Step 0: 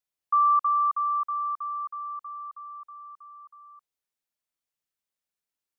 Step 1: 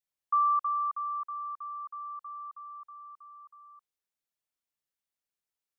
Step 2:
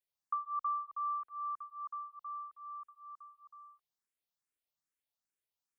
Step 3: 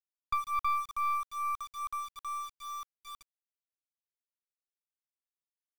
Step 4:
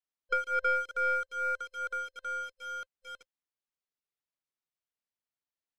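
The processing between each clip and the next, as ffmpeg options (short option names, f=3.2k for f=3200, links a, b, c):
-af "adynamicequalizer=threshold=0.0178:dfrequency=1200:dqfactor=2.4:tfrequency=1200:tqfactor=2.4:attack=5:release=100:ratio=0.375:range=2.5:mode=cutabove:tftype=bell,volume=-3.5dB"
-filter_complex "[0:a]acompressor=threshold=-32dB:ratio=3,asplit=2[a][b];[b]afreqshift=2.4[c];[a][c]amix=inputs=2:normalize=1"
-af "aeval=exprs='(tanh(39.8*val(0)+0.55)-tanh(0.55))/39.8':c=same,aeval=exprs='val(0)*gte(abs(val(0)),0.00316)':c=same,volume=8dB"
-af "afftfilt=real='real(if(between(b,1,1008),(2*floor((b-1)/24)+1)*24-b,b),0)':imag='imag(if(between(b,1,1008),(2*floor((b-1)/24)+1)*24-b,b),0)*if(between(b,1,1008),-1,1)':win_size=2048:overlap=0.75,adynamicsmooth=sensitivity=2.5:basefreq=6.5k,volume=1.5dB"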